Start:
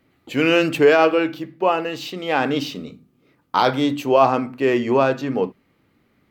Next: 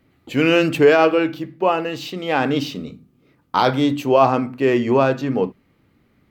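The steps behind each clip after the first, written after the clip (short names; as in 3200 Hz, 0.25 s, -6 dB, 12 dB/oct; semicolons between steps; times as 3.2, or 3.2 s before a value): low shelf 180 Hz +7 dB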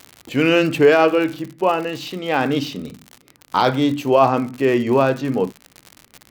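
crackle 100/s -26 dBFS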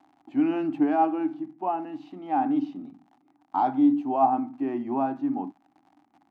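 double band-pass 480 Hz, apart 1.4 oct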